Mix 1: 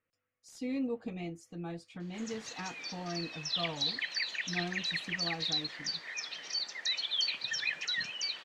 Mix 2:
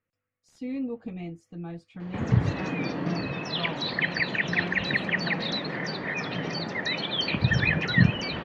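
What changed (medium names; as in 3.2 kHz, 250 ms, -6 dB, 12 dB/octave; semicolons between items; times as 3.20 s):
background: remove differentiator; master: add tone controls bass +6 dB, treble -10 dB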